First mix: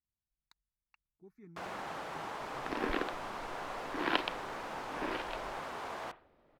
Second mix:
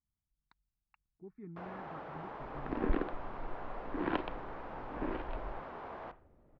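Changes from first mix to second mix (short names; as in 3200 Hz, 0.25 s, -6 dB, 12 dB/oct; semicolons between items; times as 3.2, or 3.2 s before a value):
speech +7.5 dB; second sound: add low shelf 200 Hz +12 dB; master: add tape spacing loss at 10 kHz 43 dB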